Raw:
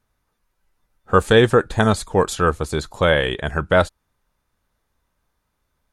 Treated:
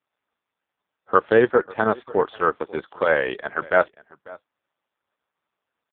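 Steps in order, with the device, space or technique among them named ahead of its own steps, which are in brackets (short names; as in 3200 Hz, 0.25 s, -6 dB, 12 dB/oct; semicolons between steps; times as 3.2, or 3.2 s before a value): satellite phone (BPF 330–3000 Hz; echo 0.543 s -22 dB; AMR-NB 4.75 kbps 8000 Hz)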